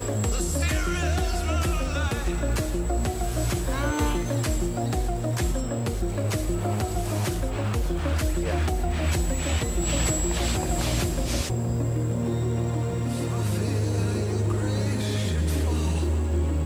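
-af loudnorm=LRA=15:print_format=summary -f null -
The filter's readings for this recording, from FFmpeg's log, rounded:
Input Integrated:    -26.4 LUFS
Input True Peak:     -12.4 dBTP
Input LRA:             1.3 LU
Input Threshold:     -36.4 LUFS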